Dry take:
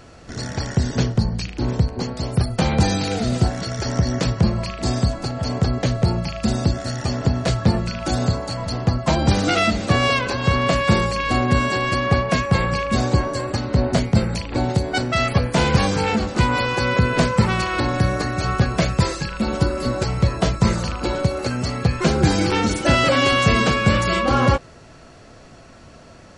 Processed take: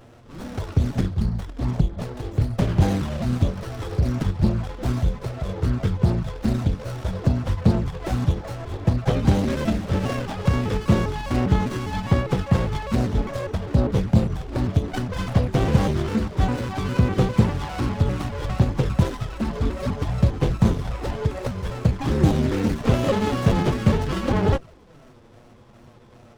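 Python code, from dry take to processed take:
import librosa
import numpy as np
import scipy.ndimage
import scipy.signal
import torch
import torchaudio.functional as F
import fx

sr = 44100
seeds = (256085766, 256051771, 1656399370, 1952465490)

y = fx.pitch_trill(x, sr, semitones=-4.5, every_ms=201)
y = fx.env_flanger(y, sr, rest_ms=9.8, full_db=-14.0)
y = fx.running_max(y, sr, window=17)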